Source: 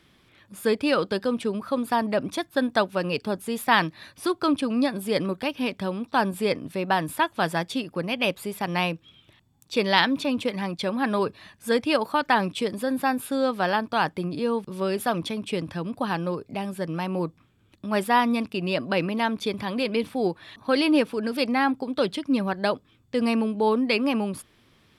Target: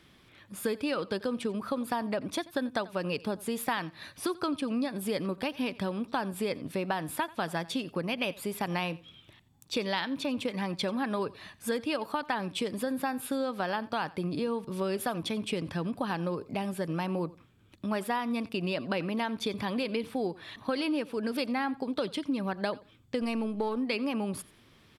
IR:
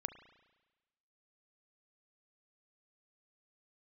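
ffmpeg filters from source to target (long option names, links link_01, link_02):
-filter_complex "[0:a]asettb=1/sr,asplit=3[link_01][link_02][link_03];[link_01]atrim=end=23.224[link_04];[link_02]atrim=start=23.22:end=23.77,asetpts=PTS-STARTPTS,afade=type=in:duration=0.004:curve=qsin,afade=type=out:start_time=0.546:duration=0.004:curve=qsin,aeval=exprs='if(lt(val(0),0),0.708*val(0),val(0))':channel_layout=same[link_05];[link_03]atrim=start=23.766[link_06];[link_04][link_05]acrossfade=duration=0.004:curve1=hsin:curve2=qsin[link_07];[link_07][link_06]acrossfade=duration=0.004:curve1=qsin:curve2=hsin,acompressor=threshold=-28dB:ratio=6,asplit=2[link_08][link_09];[link_09]aecho=0:1:89|178:0.0944|0.0189[link_10];[link_08][link_10]amix=inputs=2:normalize=0"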